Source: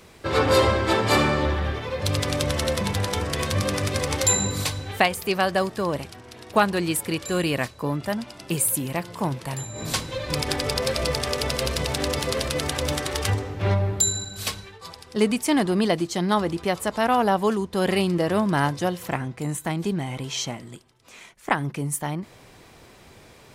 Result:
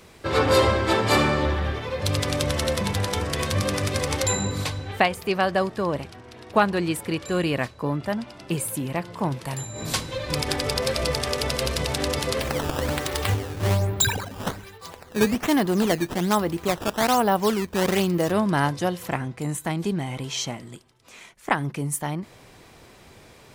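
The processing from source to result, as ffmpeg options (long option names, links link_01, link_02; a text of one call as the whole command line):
ffmpeg -i in.wav -filter_complex "[0:a]asettb=1/sr,asplit=3[link_01][link_02][link_03];[link_01]atrim=end=4.224[link_04];[link_02]atrim=start=4.22:end=9.32,asetpts=PTS-STARTPTS,afade=type=in:duration=0.004:curve=qsin,afade=type=out:start_time=5.096:duration=0.004:curve=qsin,aemphasis=mode=reproduction:type=cd[link_05];[link_03]atrim=start=9.316[link_06];[link_04][link_05]acrossfade=duration=0.004:curve1=hsin:curve2=qsin[link_07];[link_07][link_06]acrossfade=duration=0.004:curve1=qsin:curve2=hsin,asplit=3[link_08][link_09][link_10];[link_08]afade=type=out:start_time=12.4:duration=0.02[link_11];[link_09]acrusher=samples=12:mix=1:aa=0.000001:lfo=1:lforange=19.2:lforate=1.2,afade=type=in:start_time=12.4:duration=0.02,afade=type=out:start_time=18.3:duration=0.02[link_12];[link_10]afade=type=in:start_time=18.3:duration=0.02[link_13];[link_11][link_12][link_13]amix=inputs=3:normalize=0" out.wav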